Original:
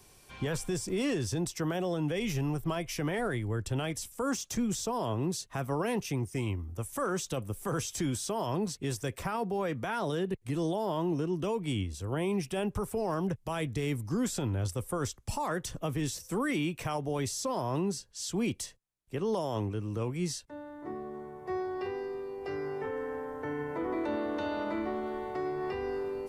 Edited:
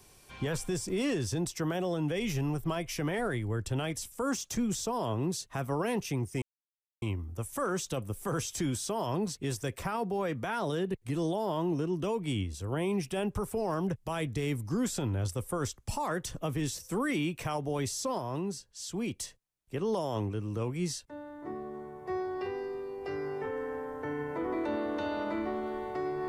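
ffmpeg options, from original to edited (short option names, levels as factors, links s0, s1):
-filter_complex "[0:a]asplit=4[s0][s1][s2][s3];[s0]atrim=end=6.42,asetpts=PTS-STARTPTS,afade=t=out:st=6.416:d=0.004:c=hsin,apad=pad_dur=0.6[s4];[s1]atrim=start=6.42:end=17.582,asetpts=PTS-STARTPTS,afade=t=in:d=0.004:c=hsin[s5];[s2]atrim=start=17.578:end=18.602,asetpts=PTS-STARTPTS,volume=0.668[s6];[s3]atrim=start=18.598[s7];[s4][s5]concat=n=2:v=0:a=1[s8];[s8][s6]acrossfade=d=0.004:c1=hsin:c2=hsin[s9];[s9][s7]acrossfade=d=0.004:c1=hsin:c2=hsin"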